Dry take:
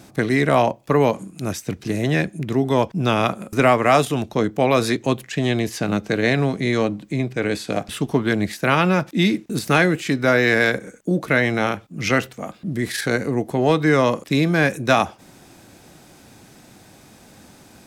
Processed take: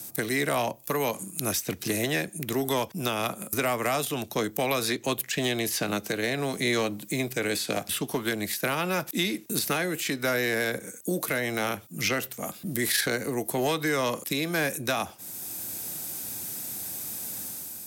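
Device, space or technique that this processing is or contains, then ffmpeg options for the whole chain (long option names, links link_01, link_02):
FM broadcast chain: -filter_complex "[0:a]highpass=frequency=69:width=0.5412,highpass=frequency=69:width=1.3066,dynaudnorm=framelen=120:gausssize=7:maxgain=6.5dB,acrossover=split=300|960|4600[link_01][link_02][link_03][link_04];[link_01]acompressor=threshold=-27dB:ratio=4[link_05];[link_02]acompressor=threshold=-18dB:ratio=4[link_06];[link_03]acompressor=threshold=-21dB:ratio=4[link_07];[link_04]acompressor=threshold=-48dB:ratio=4[link_08];[link_05][link_06][link_07][link_08]amix=inputs=4:normalize=0,aemphasis=mode=production:type=50fm,alimiter=limit=-10dB:level=0:latency=1:release=451,asoftclip=type=hard:threshold=-12.5dB,lowpass=frequency=15000:width=0.5412,lowpass=frequency=15000:width=1.3066,aemphasis=mode=production:type=50fm,volume=-6.5dB"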